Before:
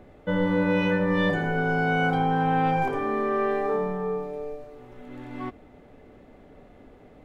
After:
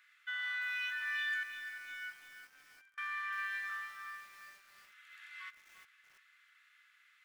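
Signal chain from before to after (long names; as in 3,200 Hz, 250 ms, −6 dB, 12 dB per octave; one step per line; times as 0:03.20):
Butterworth high-pass 1,400 Hz 48 dB per octave
0:01.43–0:02.98: downward expander −19 dBFS
brickwall limiter −31 dBFS, peak gain reduction 8.5 dB
on a send at −17 dB: convolution reverb RT60 3.9 s, pre-delay 6 ms
on the sum: feedback echo at a low word length 346 ms, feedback 55%, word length 9 bits, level −9 dB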